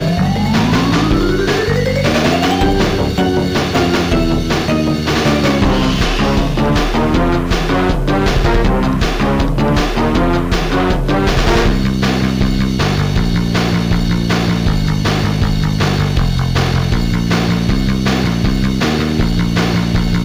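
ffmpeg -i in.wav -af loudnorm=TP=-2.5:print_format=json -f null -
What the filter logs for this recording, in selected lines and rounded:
"input_i" : "-14.5",
"input_tp" : "-6.0",
"input_lra" : "1.1",
"input_thresh" : "-24.5",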